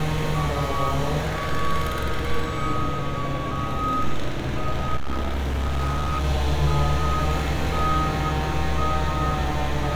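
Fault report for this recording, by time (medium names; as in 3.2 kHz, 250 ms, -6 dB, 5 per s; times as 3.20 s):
4.96–6.25 s: clipped -20.5 dBFS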